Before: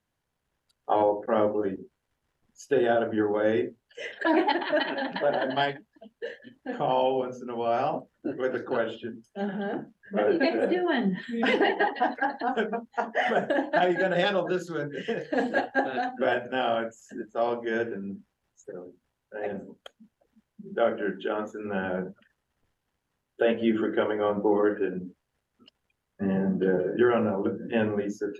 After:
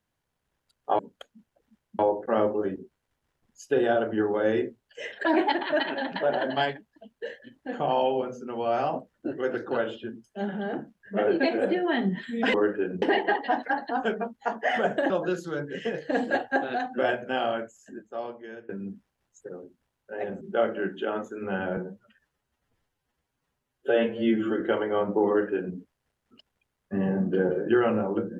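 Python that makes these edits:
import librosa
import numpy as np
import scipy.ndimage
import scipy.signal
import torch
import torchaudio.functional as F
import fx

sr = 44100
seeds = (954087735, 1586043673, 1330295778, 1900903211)

y = fx.edit(x, sr, fx.cut(start_s=13.62, length_s=0.71),
    fx.fade_out_to(start_s=16.53, length_s=1.39, floor_db=-20.5),
    fx.move(start_s=19.64, length_s=1.0, to_s=0.99),
    fx.stretch_span(start_s=22.0, length_s=1.89, factor=1.5),
    fx.duplicate(start_s=24.56, length_s=0.48, to_s=11.54), tone=tone)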